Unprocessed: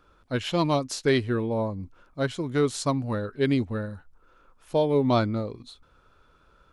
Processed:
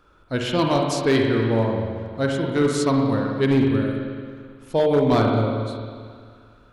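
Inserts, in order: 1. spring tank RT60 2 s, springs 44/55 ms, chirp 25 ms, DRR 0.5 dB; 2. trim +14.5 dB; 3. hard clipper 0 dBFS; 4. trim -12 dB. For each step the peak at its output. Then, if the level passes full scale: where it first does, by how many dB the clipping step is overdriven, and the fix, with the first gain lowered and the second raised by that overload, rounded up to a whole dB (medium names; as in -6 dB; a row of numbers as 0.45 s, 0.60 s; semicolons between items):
-8.0 dBFS, +6.5 dBFS, 0.0 dBFS, -12.0 dBFS; step 2, 6.5 dB; step 2 +7.5 dB, step 4 -5 dB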